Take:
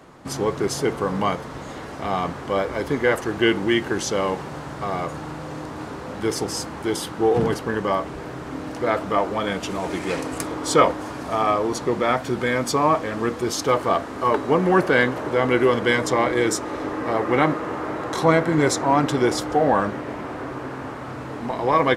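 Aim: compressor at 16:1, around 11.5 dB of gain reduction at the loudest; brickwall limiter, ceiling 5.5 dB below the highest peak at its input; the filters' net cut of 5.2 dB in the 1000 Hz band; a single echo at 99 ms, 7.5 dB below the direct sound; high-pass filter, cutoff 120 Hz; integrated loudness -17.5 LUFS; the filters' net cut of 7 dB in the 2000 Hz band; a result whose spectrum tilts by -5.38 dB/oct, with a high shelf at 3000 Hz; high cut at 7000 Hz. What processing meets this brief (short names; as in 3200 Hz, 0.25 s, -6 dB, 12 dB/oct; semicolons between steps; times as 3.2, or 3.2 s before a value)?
HPF 120 Hz; LPF 7000 Hz; bell 1000 Hz -4.5 dB; bell 2000 Hz -5 dB; high shelf 3000 Hz -7 dB; compressor 16:1, threshold -25 dBFS; limiter -21.5 dBFS; echo 99 ms -7.5 dB; gain +14.5 dB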